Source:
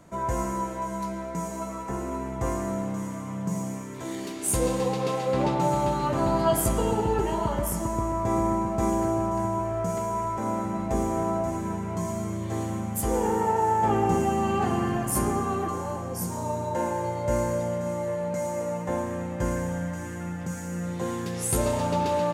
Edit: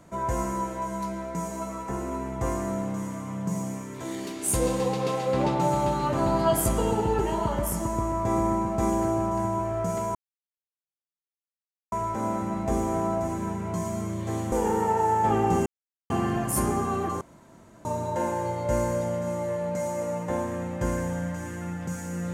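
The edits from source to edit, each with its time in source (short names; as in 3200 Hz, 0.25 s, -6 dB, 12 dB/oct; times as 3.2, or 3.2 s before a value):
10.15 insert silence 1.77 s
12.75–13.11 cut
14.25–14.69 mute
15.8–16.44 room tone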